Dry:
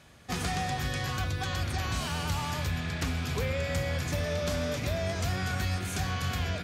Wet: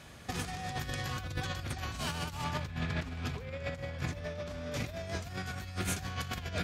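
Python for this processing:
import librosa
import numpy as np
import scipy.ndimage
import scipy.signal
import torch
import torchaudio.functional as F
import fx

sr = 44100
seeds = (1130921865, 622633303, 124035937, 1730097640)

y = fx.lowpass(x, sr, hz=3100.0, slope=6, at=(2.44, 4.74))
y = fx.over_compress(y, sr, threshold_db=-35.0, ratio=-0.5)
y = F.gain(torch.from_numpy(y), -1.0).numpy()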